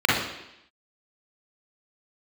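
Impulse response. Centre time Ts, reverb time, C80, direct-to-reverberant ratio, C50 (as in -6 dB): 64 ms, 0.85 s, 5.5 dB, -6.0 dB, -0.5 dB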